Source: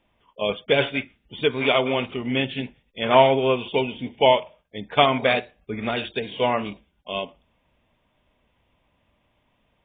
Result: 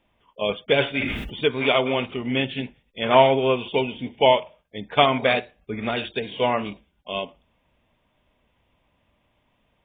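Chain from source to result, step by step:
0:00.88–0:01.41: level that may fall only so fast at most 35 dB per second

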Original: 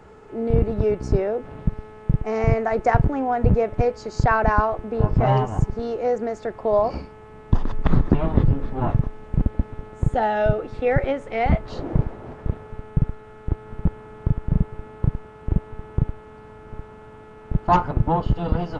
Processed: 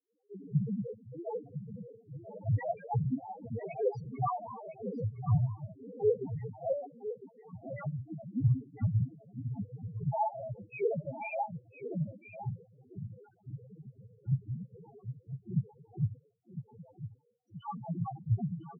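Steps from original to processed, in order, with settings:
every frequency bin delayed by itself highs early, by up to 368 ms
noise gate with hold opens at −34 dBFS
high-shelf EQ 2,100 Hz +8.5 dB
in parallel at +0.5 dB: brickwall limiter −13 dBFS, peak gain reduction 11 dB
on the sum: cochlear-implant simulation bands 16
gate pattern ".xxx..xxx...." 165 BPM −12 dB
spectral peaks only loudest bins 1
on a send: single-tap delay 1,006 ms −11.5 dB
on the sum: level −4 dB

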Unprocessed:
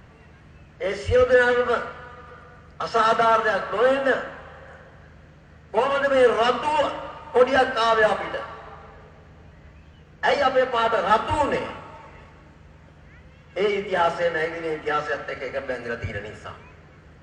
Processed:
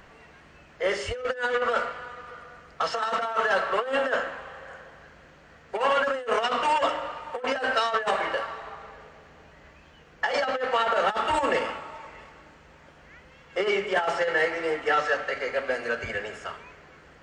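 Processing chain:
compressor whose output falls as the input rises −22 dBFS, ratio −0.5
parametric band 100 Hz −15 dB 2.4 octaves

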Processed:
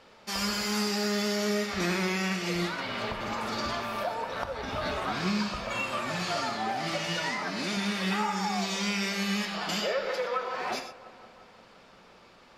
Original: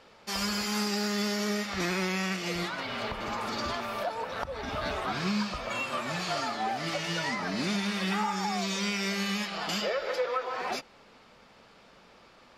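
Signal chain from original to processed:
0:07.23–0:07.77: low-shelf EQ 180 Hz −11.5 dB
delay with a low-pass on its return 174 ms, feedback 72%, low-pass 1,800 Hz, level −17.5 dB
reverb whose tail is shaped and stops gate 140 ms flat, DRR 7 dB

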